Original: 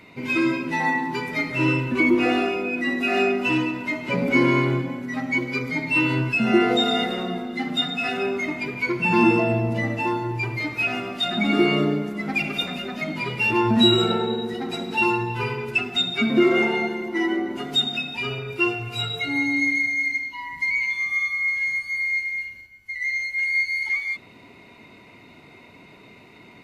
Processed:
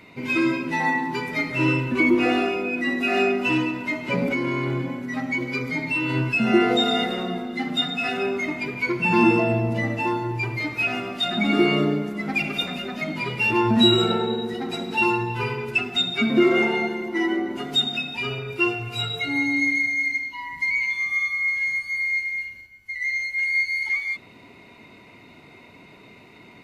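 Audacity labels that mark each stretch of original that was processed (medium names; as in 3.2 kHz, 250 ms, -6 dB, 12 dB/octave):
4.260000	6.150000	compression 10:1, threshold -20 dBFS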